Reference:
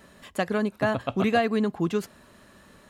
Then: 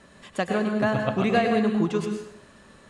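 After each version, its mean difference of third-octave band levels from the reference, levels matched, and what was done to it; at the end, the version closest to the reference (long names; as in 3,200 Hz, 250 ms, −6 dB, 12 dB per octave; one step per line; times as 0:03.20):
4.5 dB: Butterworth low-pass 9,900 Hz 36 dB per octave
dense smooth reverb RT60 0.71 s, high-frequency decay 0.9×, pre-delay 90 ms, DRR 3 dB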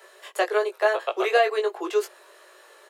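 7.5 dB: Butterworth high-pass 350 Hz 96 dB per octave
double-tracking delay 19 ms −4 dB
level +2.5 dB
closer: first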